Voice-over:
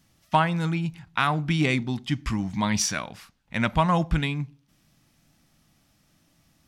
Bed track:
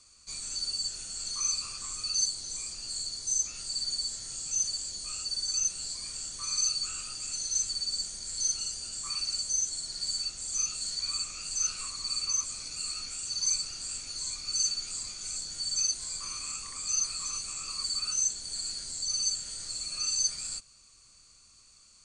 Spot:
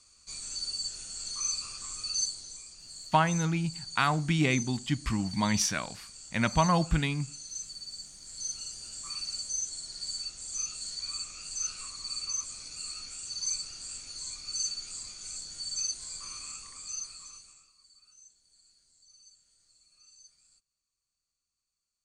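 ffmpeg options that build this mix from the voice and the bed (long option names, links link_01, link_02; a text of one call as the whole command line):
ffmpeg -i stem1.wav -i stem2.wav -filter_complex "[0:a]adelay=2800,volume=-3dB[link_01];[1:a]volume=4dB,afade=type=out:start_time=2.19:duration=0.45:silence=0.398107,afade=type=in:start_time=8.11:duration=0.83:silence=0.501187,afade=type=out:start_time=16.38:duration=1.33:silence=0.0595662[link_02];[link_01][link_02]amix=inputs=2:normalize=0" out.wav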